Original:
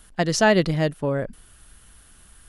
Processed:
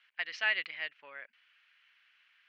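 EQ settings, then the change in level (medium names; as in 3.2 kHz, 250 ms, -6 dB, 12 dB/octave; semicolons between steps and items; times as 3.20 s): ladder band-pass 2.6 kHz, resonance 55%; distance through air 270 m; band-stop 3.6 kHz, Q 21; +7.5 dB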